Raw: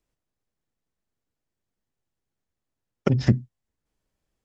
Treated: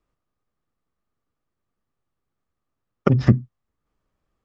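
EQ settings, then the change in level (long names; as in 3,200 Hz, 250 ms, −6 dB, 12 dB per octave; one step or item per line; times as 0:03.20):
low-pass filter 2,200 Hz 6 dB per octave
parametric band 1,200 Hz +12 dB 0.22 octaves
+4.0 dB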